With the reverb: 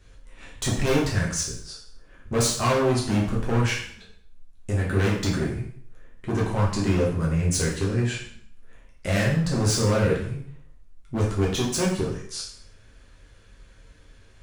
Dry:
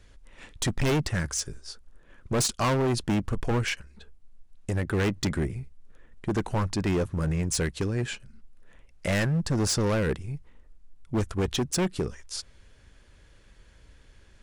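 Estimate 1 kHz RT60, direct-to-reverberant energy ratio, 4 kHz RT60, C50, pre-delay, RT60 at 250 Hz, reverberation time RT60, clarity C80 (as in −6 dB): 0.60 s, −4.5 dB, 0.55 s, 4.5 dB, 4 ms, 0.60 s, 0.60 s, 8.5 dB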